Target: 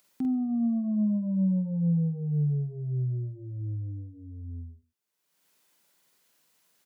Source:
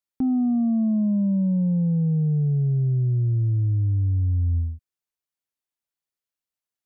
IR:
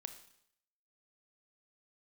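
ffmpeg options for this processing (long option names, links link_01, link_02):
-filter_complex "[0:a]lowshelf=frequency=110:width_type=q:width=1.5:gain=-13.5,acompressor=mode=upward:threshold=-38dB:ratio=2.5,asplit=2[link_01][link_02];[link_02]aecho=0:1:47|49|140:0.631|0.398|0.1[link_03];[link_01][link_03]amix=inputs=2:normalize=0,volume=-8.5dB"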